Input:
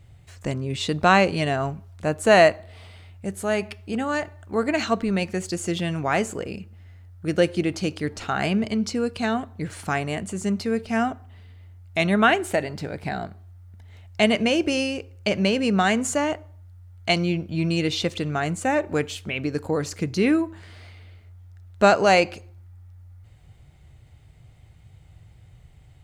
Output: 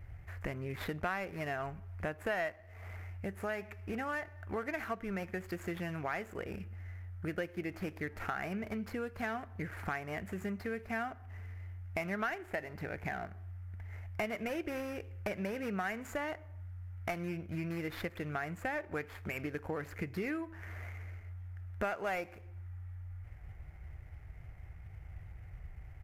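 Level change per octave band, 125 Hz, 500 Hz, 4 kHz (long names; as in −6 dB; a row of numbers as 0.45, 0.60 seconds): −12.0, −16.5, −23.0 decibels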